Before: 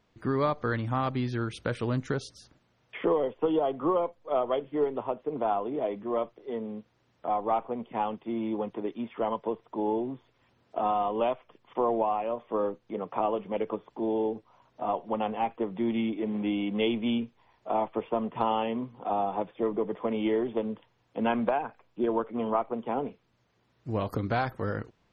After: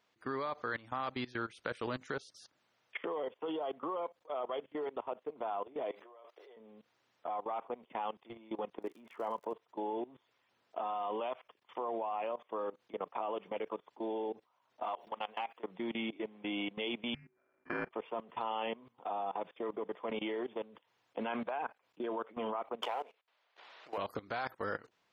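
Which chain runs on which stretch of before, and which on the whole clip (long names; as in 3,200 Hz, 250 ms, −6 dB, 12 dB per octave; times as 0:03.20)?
0:05.91–0:06.57: high-pass filter 400 Hz 24 dB per octave + compressor whose output falls as the input rises −41 dBFS
0:08.81–0:09.52: low-pass filter 2,200 Hz + surface crackle 110 per second −48 dBFS
0:14.83–0:15.64: downward compressor 12 to 1, threshold −29 dBFS + spectral tilt +2.5 dB per octave
0:17.14–0:17.91: samples sorted by size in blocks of 16 samples + low-pass filter 2,000 Hz 24 dB per octave + frequency shifter −380 Hz
0:22.82–0:23.98: Chebyshev band-pass filter 610–3,600 Hz + leveller curve on the samples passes 1 + background raised ahead of every attack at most 70 dB per second
whole clip: high-pass filter 890 Hz 6 dB per octave; output level in coarse steps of 20 dB; level +3.5 dB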